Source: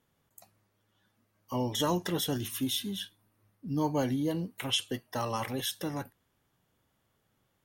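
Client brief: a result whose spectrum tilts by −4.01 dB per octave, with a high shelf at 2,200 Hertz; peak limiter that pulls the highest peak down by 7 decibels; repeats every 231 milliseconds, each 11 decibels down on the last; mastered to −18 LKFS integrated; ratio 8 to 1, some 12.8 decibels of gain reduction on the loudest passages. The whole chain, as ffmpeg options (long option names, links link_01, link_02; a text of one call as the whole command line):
ffmpeg -i in.wav -af "highshelf=frequency=2200:gain=6,acompressor=threshold=-34dB:ratio=8,alimiter=level_in=5dB:limit=-24dB:level=0:latency=1,volume=-5dB,aecho=1:1:231|462|693:0.282|0.0789|0.0221,volume=21.5dB" out.wav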